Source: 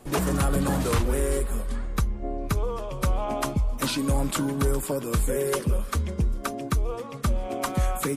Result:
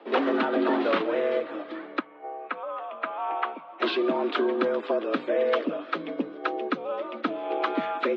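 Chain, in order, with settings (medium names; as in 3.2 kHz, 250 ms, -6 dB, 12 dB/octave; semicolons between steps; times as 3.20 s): 1.99–3.80 s: three-band isolator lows -17 dB, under 530 Hz, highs -24 dB, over 2.8 kHz; mistuned SSB +90 Hz 170–3600 Hz; trim +2.5 dB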